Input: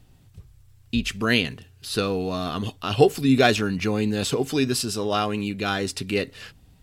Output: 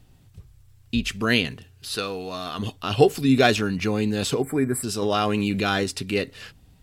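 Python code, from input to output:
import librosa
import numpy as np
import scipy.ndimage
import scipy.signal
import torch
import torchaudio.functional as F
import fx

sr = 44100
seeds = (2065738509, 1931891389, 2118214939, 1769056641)

y = fx.low_shelf(x, sr, hz=440.0, db=-11.0, at=(1.95, 2.59))
y = fx.spec_box(y, sr, start_s=4.42, length_s=0.41, low_hz=2400.0, high_hz=7400.0, gain_db=-27)
y = fx.env_flatten(y, sr, amount_pct=70, at=(5.02, 5.84))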